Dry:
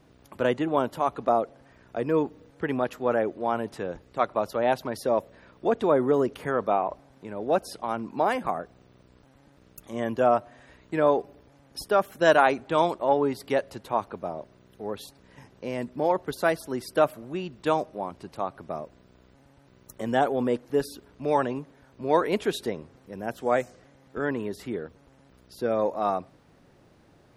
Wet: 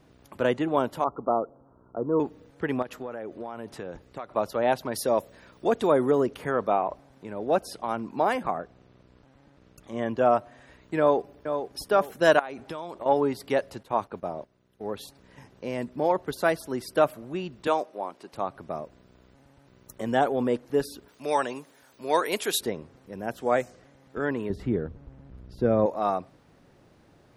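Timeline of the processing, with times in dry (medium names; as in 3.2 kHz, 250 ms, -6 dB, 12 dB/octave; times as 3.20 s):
1.04–2.20 s: rippled Chebyshev low-pass 1.4 kHz, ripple 3 dB
2.82–4.33 s: compression 12:1, threshold -31 dBFS
4.91–6.11 s: treble shelf 4.9 kHz +11.5 dB
8.43–10.26 s: distance through air 63 m
10.99–11.82 s: echo throw 460 ms, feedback 35%, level -8 dB
12.39–13.06 s: compression 10:1, threshold -31 dBFS
13.83–14.92 s: gate -45 dBFS, range -11 dB
17.67–18.33 s: high-pass 330 Hz
21.08–22.61 s: RIAA curve recording
24.50–25.86 s: RIAA curve playback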